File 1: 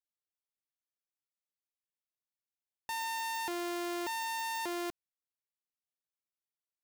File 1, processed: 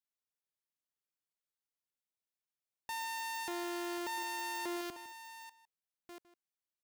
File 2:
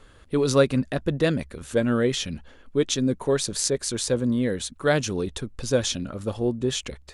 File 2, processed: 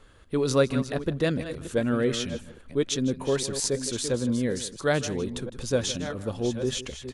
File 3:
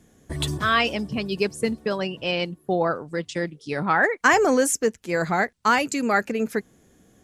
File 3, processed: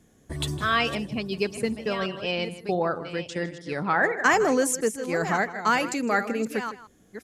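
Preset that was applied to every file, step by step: chunks repeated in reverse 687 ms, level -11 dB; echo from a far wall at 27 m, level -15 dB; trim -3 dB

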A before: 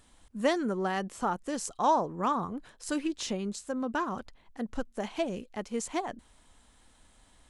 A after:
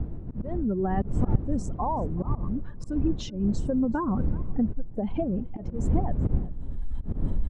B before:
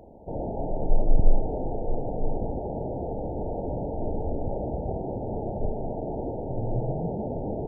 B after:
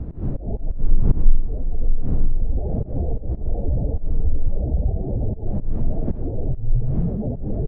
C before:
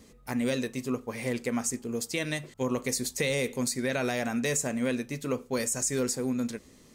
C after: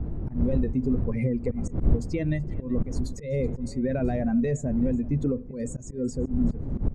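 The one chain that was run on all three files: spectral contrast enhancement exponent 1.9; recorder AGC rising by 17 dB/s; wind noise 260 Hz -27 dBFS; RIAA curve playback; in parallel at +1 dB: compression 16:1, threshold -15 dBFS; on the sum: slow attack 146 ms; on a send: delay 378 ms -21.5 dB; on the sum: trim -14.5 dB

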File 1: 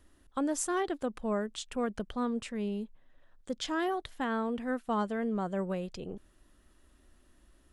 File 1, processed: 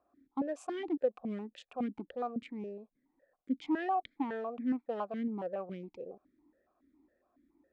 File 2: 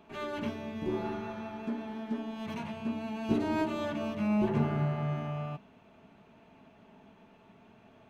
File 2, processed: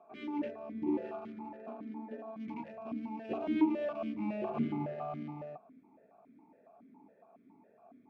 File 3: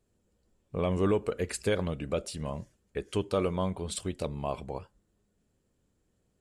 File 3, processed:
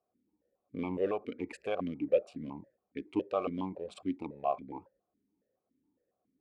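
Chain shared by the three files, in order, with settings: local Wiener filter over 15 samples; stepped vowel filter 7.2 Hz; trim +8.5 dB

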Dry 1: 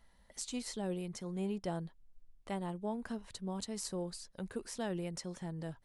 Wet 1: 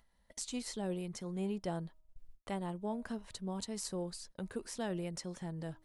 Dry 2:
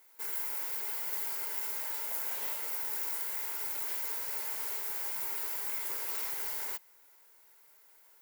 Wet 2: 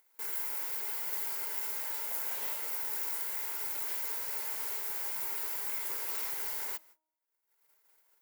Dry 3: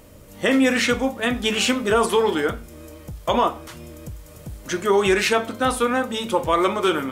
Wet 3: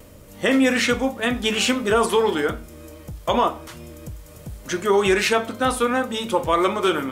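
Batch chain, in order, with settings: gate -55 dBFS, range -46 dB; de-hum 314.7 Hz, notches 4; upward compressor, threshold -42 dBFS

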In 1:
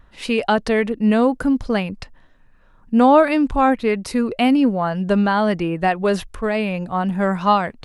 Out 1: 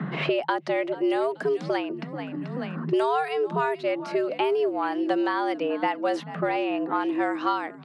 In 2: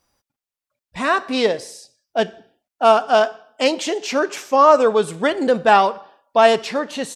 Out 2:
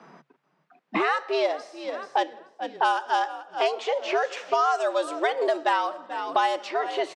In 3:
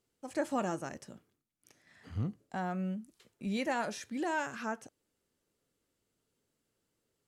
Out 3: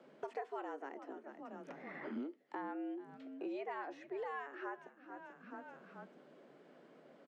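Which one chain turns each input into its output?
level-controlled noise filter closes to 1.7 kHz, open at -10 dBFS; on a send: frequency-shifting echo 434 ms, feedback 36%, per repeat -59 Hz, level -20 dB; on the sum: frequency shift +140 Hz; three bands compressed up and down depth 100%; trim -8 dB

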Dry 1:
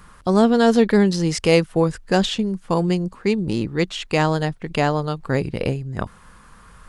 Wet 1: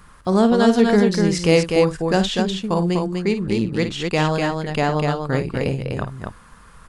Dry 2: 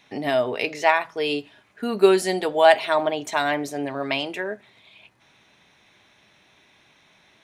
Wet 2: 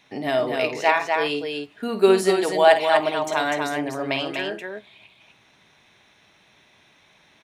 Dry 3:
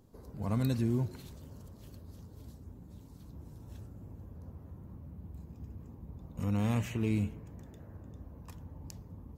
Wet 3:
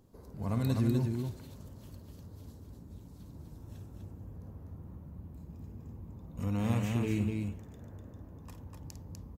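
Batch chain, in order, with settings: loudspeakers at several distances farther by 18 m -10 dB, 85 m -4 dB; trim -1 dB

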